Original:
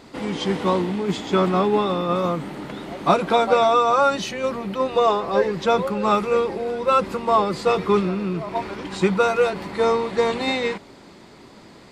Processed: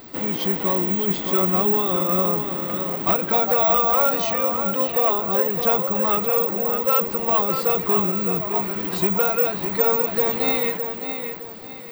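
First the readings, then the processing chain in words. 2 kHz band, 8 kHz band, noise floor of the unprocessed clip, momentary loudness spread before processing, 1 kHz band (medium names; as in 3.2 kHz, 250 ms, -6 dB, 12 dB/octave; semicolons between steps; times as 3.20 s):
-2.0 dB, -1.5 dB, -46 dBFS, 8 LU, -3.5 dB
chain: in parallel at +2 dB: compression, threshold -26 dBFS, peak gain reduction 13.5 dB; on the sum: overload inside the chain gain 10.5 dB; feedback echo behind a low-pass 612 ms, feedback 33%, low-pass 4 kHz, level -7 dB; careless resampling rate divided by 2×, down filtered, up zero stuff; trim -6.5 dB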